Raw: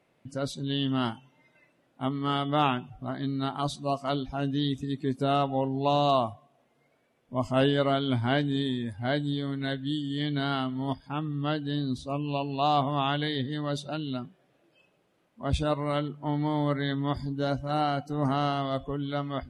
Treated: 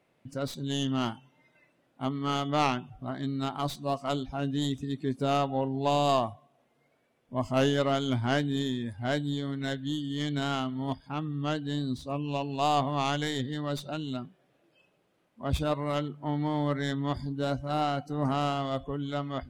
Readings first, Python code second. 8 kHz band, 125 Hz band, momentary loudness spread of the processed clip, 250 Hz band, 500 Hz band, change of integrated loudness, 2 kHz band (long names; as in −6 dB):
can't be measured, −1.5 dB, 8 LU, −1.5 dB, −1.5 dB, −1.5 dB, −1.0 dB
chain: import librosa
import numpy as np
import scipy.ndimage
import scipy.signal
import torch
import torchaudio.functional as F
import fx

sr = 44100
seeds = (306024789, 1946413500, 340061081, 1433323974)

y = fx.tracing_dist(x, sr, depth_ms=0.082)
y = F.gain(torch.from_numpy(y), -1.5).numpy()